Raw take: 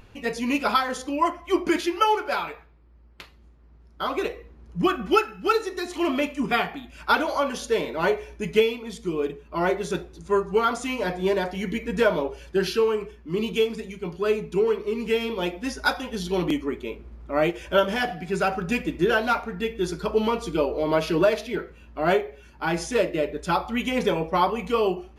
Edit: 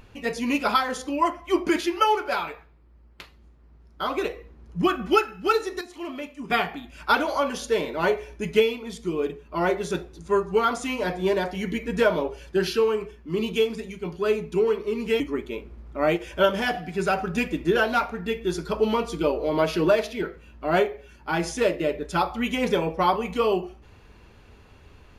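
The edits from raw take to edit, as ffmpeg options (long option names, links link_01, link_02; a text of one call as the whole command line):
ffmpeg -i in.wav -filter_complex "[0:a]asplit=4[link_01][link_02][link_03][link_04];[link_01]atrim=end=5.812[link_05];[link_02]atrim=start=5.808:end=6.502,asetpts=PTS-STARTPTS,volume=-10dB[link_06];[link_03]atrim=start=6.498:end=15.202[link_07];[link_04]atrim=start=16.538[link_08];[link_05][link_06]acrossfade=duration=0.004:curve1=hsin:curve2=hsin[link_09];[link_09][link_07]acrossfade=duration=0.004:curve1=hsin:curve2=hsin[link_10];[link_10][link_08]acrossfade=duration=0.004:curve1=hsin:curve2=hsin" out.wav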